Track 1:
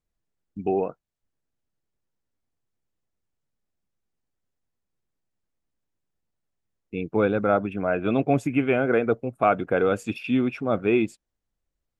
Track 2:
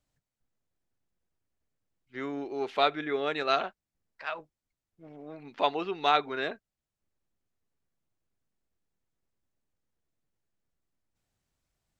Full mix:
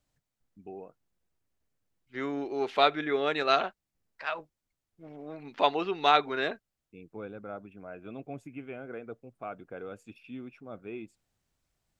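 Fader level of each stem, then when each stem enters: −19.5, +2.0 decibels; 0.00, 0.00 seconds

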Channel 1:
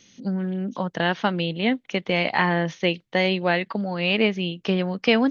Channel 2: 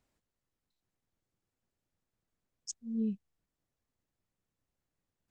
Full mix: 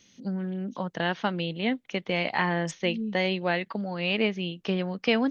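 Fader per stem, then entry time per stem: −5.0, +0.5 decibels; 0.00, 0.00 seconds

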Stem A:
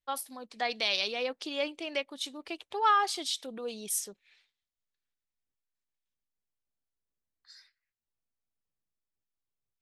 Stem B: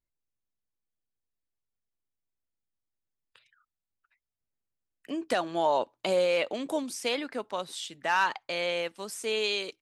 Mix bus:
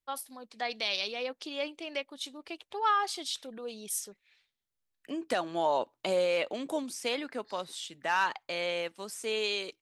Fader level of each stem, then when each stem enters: −2.5, −2.5 decibels; 0.00, 0.00 seconds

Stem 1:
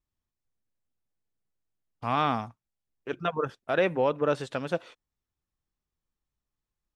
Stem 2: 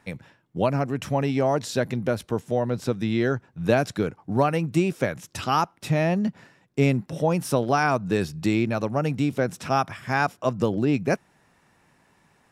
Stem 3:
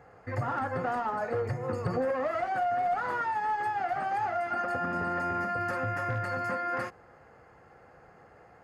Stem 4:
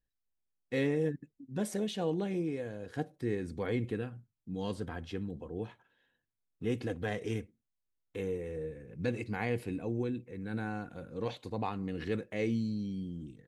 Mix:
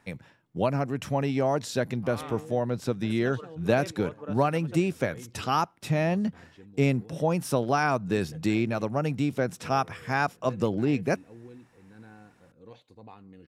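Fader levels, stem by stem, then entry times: −15.0 dB, −3.0 dB, muted, −13.0 dB; 0.00 s, 0.00 s, muted, 1.45 s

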